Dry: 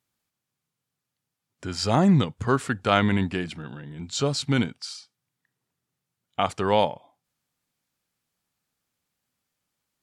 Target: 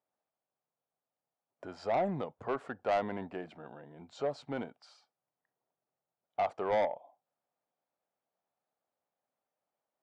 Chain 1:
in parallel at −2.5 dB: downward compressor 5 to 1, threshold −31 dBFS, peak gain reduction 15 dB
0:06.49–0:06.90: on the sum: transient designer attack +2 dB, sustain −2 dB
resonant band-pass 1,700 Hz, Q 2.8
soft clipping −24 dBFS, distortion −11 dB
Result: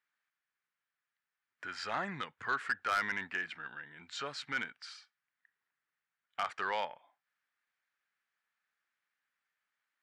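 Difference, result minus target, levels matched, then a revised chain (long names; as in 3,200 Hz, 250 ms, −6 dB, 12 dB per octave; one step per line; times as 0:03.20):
2,000 Hz band +12.5 dB; downward compressor: peak gain reduction −6.5 dB
in parallel at −2.5 dB: downward compressor 5 to 1, threshold −39 dBFS, peak gain reduction 21.5 dB
0:06.49–0:06.90: on the sum: transient designer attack +2 dB, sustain −2 dB
resonant band-pass 660 Hz, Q 2.8
soft clipping −24 dBFS, distortion −10 dB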